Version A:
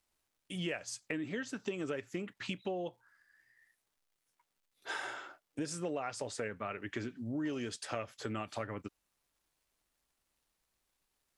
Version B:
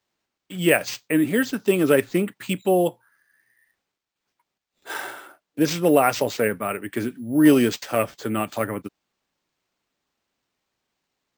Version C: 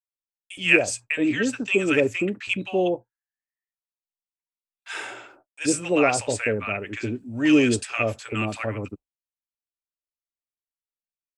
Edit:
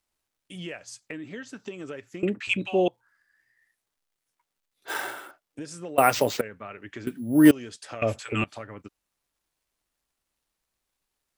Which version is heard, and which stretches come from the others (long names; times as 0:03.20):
A
0:02.23–0:02.88: punch in from C
0:04.88–0:05.31: punch in from B
0:05.98–0:06.41: punch in from B
0:07.07–0:07.51: punch in from B
0:08.02–0:08.44: punch in from C